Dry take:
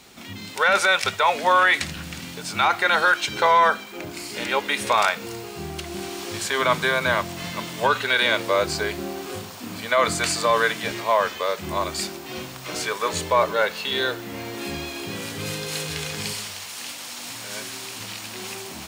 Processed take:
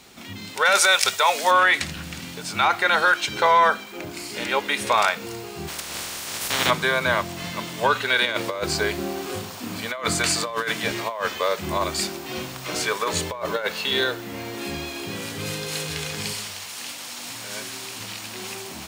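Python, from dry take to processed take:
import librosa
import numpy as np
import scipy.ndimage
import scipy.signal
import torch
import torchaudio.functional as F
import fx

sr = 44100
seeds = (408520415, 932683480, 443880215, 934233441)

y = fx.bass_treble(x, sr, bass_db=-10, treble_db=11, at=(0.65, 1.51))
y = fx.spec_clip(y, sr, under_db=26, at=(5.67, 6.69), fade=0.02)
y = fx.over_compress(y, sr, threshold_db=-23.0, ratio=-0.5, at=(8.25, 14.04))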